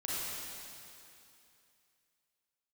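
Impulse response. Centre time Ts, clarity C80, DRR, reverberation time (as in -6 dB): 200 ms, -3.0 dB, -8.0 dB, 2.7 s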